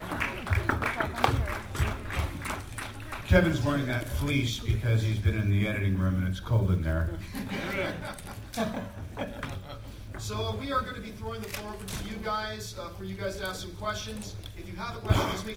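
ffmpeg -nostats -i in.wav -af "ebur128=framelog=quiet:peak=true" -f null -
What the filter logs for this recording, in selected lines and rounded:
Integrated loudness:
  I:         -30.5 LUFS
  Threshold: -40.7 LUFS
Loudness range:
  LRA:         7.8 LU
  Threshold: -50.7 LUFS
  LRA low:   -35.4 LUFS
  LRA high:  -27.6 LUFS
True peak:
  Peak:       -4.1 dBFS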